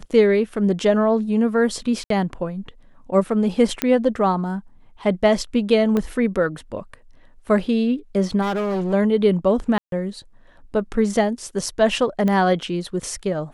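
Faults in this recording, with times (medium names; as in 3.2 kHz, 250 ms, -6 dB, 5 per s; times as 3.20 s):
2.04–2.10 s: dropout 63 ms
3.82 s: pop -4 dBFS
5.97 s: pop -11 dBFS
8.41–8.94 s: clipped -20 dBFS
9.78–9.92 s: dropout 142 ms
12.28 s: pop -12 dBFS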